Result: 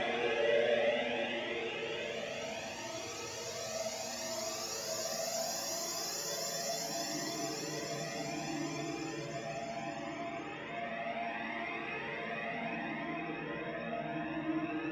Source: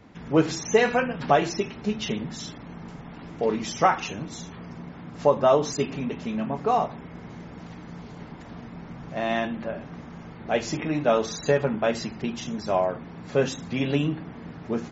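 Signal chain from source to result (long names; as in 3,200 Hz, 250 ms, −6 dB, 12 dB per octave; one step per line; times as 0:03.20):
stylus tracing distortion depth 0.025 ms
high-pass filter 350 Hz 6 dB per octave
high-shelf EQ 4,600 Hz +6 dB
delay with a low-pass on its return 736 ms, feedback 72%, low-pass 1,600 Hz, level −4 dB
extreme stretch with random phases 43×, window 0.10 s, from 0:10.55
flanger whose copies keep moving one way rising 0.69 Hz
level −4.5 dB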